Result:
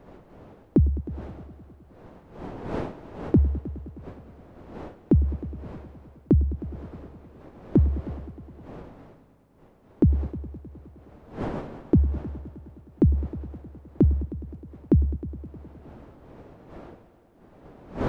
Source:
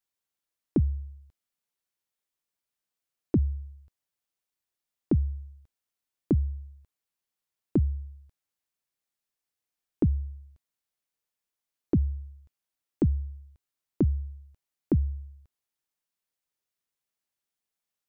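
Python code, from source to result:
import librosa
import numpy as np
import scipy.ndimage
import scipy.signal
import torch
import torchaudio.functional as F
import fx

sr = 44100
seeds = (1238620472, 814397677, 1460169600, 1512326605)

y = fx.dmg_wind(x, sr, seeds[0], corner_hz=490.0, level_db=-47.0)
y = fx.echo_heads(y, sr, ms=104, heads='all three', feedback_pct=58, wet_db=-20)
y = F.gain(torch.from_numpy(y), 5.0).numpy()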